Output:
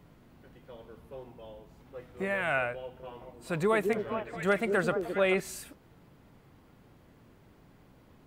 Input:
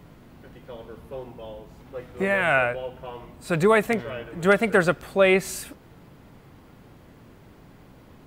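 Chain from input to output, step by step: 2.78–5.4 delay with a stepping band-pass 0.216 s, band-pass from 320 Hz, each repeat 1.4 oct, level -1 dB; gain -8.5 dB

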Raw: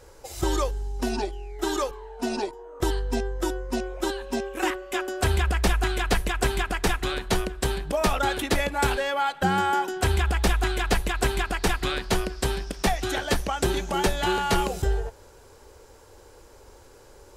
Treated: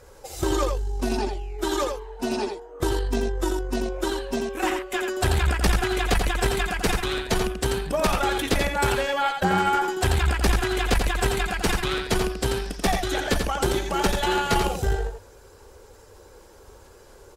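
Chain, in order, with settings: bin magnitudes rounded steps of 15 dB; echo 86 ms -5.5 dB; tube stage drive 13 dB, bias 0.55; gain +3.5 dB

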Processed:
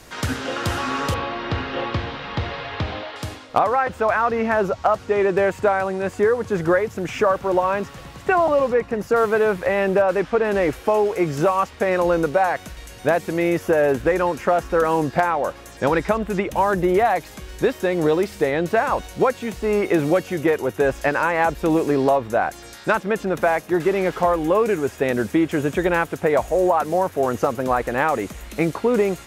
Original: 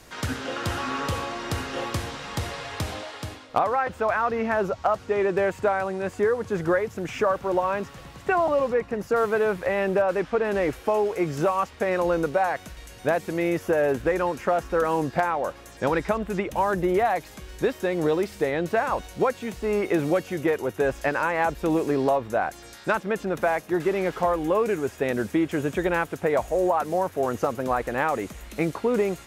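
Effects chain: 1.14–3.16 LPF 4000 Hz 24 dB/oct; gain +4.5 dB

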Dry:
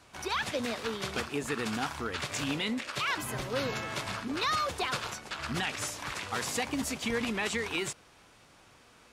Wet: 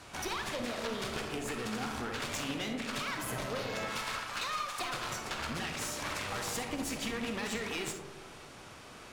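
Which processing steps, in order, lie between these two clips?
3.88–4.81 HPF 810 Hz 24 dB/oct; compressor, threshold -39 dBFS, peak gain reduction 12 dB; one-sided clip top -47.5 dBFS; digital reverb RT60 1.4 s, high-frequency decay 0.25×, pre-delay 5 ms, DRR 3.5 dB; gain +6.5 dB

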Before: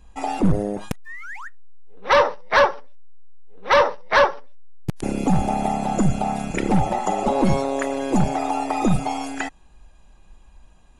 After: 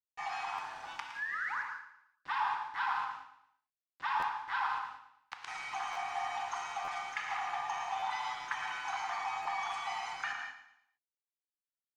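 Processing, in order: steep high-pass 910 Hz 72 dB/oct; reverse; compressor 5:1, threshold -34 dBFS, peak gain reduction 19 dB; reverse; requantised 8-bit, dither none; air absorption 150 m; on a send: feedback echo 0.104 s, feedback 37%, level -11 dB; on the sum: non-linear reverb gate 0.2 s flat, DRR 2 dB; speed mistake 48 kHz file played as 44.1 kHz; stuck buffer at 0.55/4.19/5.92/6.84/7.99/9.42, samples 512, times 2

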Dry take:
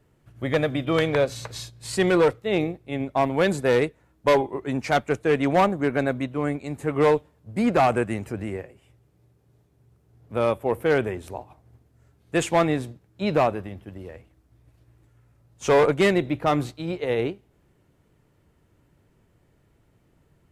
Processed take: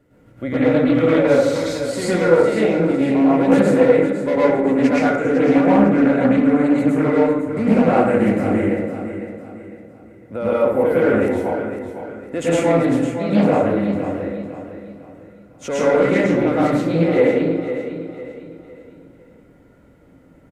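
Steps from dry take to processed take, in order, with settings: limiter -21 dBFS, peak gain reduction 11.5 dB; small resonant body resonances 280/520/1400/2000 Hz, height 12 dB, ringing for 30 ms; on a send: feedback echo 0.504 s, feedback 38%, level -10 dB; on the sum: plate-style reverb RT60 0.92 s, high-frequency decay 0.45×, pre-delay 95 ms, DRR -8.5 dB; Doppler distortion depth 0.26 ms; gain -2 dB

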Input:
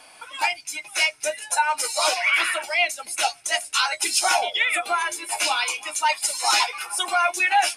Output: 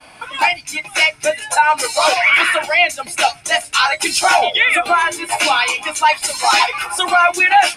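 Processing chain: expander -45 dBFS; tone controls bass +12 dB, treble -8 dB; in parallel at -1.5 dB: limiter -18 dBFS, peak gain reduction 9 dB; on the sum: gain +5.5 dB

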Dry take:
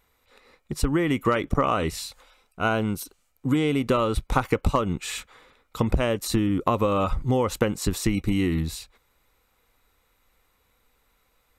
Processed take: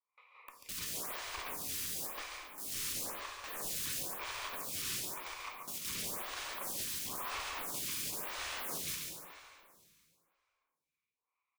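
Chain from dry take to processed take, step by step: local time reversal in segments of 0.172 s; gate with hold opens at -51 dBFS; sample leveller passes 5; vibrato 2.5 Hz 26 cents; double band-pass 1600 Hz, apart 1.1 oct; sine folder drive 16 dB, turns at -32.5 dBFS; echo 0.14 s -6 dB; plate-style reverb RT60 2.4 s, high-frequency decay 0.9×, DRR -1 dB; photocell phaser 0.98 Hz; gain -4 dB

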